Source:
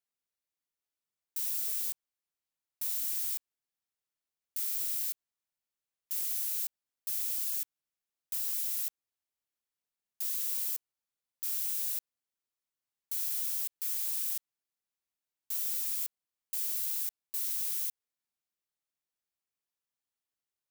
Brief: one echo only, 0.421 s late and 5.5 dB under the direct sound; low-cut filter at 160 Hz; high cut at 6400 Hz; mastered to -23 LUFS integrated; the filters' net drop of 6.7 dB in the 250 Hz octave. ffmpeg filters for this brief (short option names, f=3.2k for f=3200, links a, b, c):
-af "highpass=160,lowpass=6.4k,equalizer=f=250:t=o:g=-9,aecho=1:1:421:0.531,volume=23dB"